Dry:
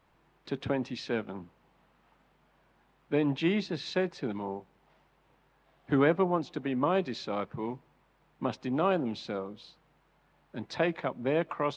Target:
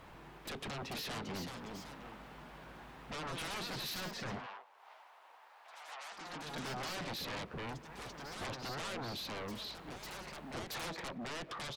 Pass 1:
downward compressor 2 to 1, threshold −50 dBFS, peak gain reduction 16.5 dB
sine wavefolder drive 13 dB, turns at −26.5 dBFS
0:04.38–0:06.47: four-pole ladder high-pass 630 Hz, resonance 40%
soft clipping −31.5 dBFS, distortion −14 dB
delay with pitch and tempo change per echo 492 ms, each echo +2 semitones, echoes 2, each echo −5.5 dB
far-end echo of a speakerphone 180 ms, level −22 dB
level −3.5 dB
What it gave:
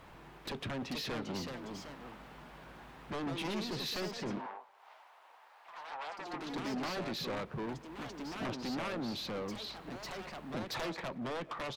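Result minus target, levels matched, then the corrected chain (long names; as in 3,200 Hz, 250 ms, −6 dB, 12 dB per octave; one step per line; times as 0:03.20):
sine wavefolder: distortion −14 dB
downward compressor 2 to 1, threshold −50 dBFS, peak gain reduction 16.5 dB
sine wavefolder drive 13 dB, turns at −34.5 dBFS
0:04.38–0:06.47: four-pole ladder high-pass 630 Hz, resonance 40%
soft clipping −31.5 dBFS, distortion −27 dB
delay with pitch and tempo change per echo 492 ms, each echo +2 semitones, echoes 2, each echo −5.5 dB
far-end echo of a speakerphone 180 ms, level −22 dB
level −3.5 dB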